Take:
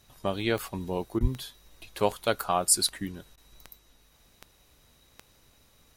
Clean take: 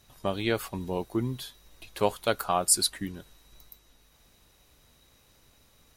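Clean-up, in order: de-click; 1.21–1.33 HPF 140 Hz 24 dB/oct; interpolate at 1.19/3.36, 14 ms

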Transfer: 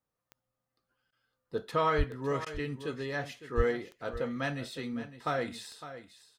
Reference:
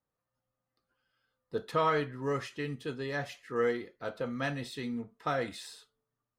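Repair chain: de-click; 1.97–2.09 HPF 140 Hz 24 dB/oct; 3.56–3.68 HPF 140 Hz 24 dB/oct; interpolate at 1.11/2.45, 12 ms; inverse comb 0.558 s -13 dB

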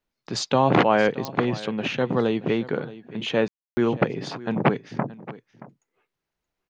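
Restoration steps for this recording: de-click; room tone fill 3.48–3.77; inverse comb 0.625 s -17.5 dB

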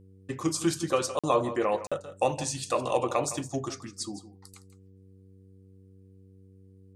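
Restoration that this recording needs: de-hum 95.4 Hz, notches 5; interpolate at 1.19/1.87, 46 ms; inverse comb 0.163 s -14 dB

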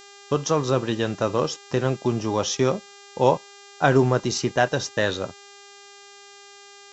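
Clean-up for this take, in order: de-hum 401.7 Hz, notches 19; expander -39 dBFS, range -21 dB

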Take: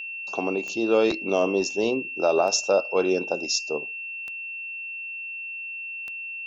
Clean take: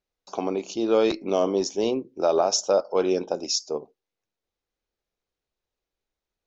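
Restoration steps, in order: de-click; notch 2700 Hz, Q 30

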